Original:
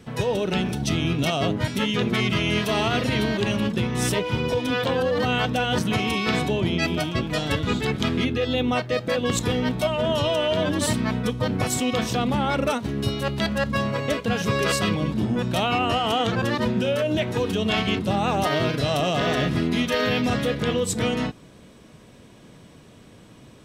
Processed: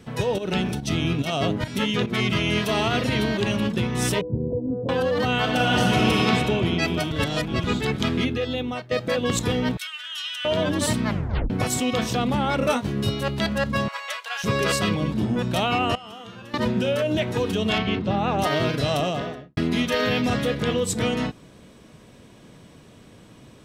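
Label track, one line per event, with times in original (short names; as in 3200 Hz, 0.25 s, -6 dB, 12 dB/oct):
0.380000	2.320000	pump 143 bpm, dips per beat 1, -12 dB, release 0.186 s
4.210000	4.890000	inverse Chebyshev low-pass stop band from 2900 Hz, stop band 80 dB
5.390000	6.240000	reverb throw, RT60 2.9 s, DRR -2 dB
7.110000	7.640000	reverse
8.230000	8.910000	fade out, to -11.5 dB
9.770000	10.450000	elliptic high-pass 1500 Hz, stop band 80 dB
11.070000	11.070000	tape stop 0.43 s
12.590000	13.100000	doubler 20 ms -5 dB
13.880000	14.440000	inverse Chebyshev high-pass stop band from 250 Hz, stop band 60 dB
15.950000	16.540000	resonator 200 Hz, decay 1 s, mix 90%
17.780000	18.390000	air absorption 160 m
18.920000	19.570000	studio fade out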